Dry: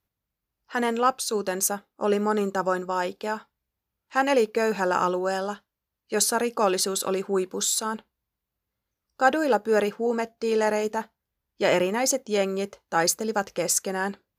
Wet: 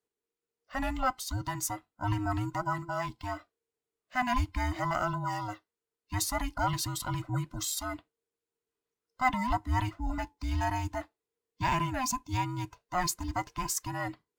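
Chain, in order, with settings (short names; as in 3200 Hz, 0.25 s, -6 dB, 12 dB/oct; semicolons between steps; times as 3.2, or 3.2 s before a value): band inversion scrambler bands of 500 Hz; decimation joined by straight lines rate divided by 2×; gain -7 dB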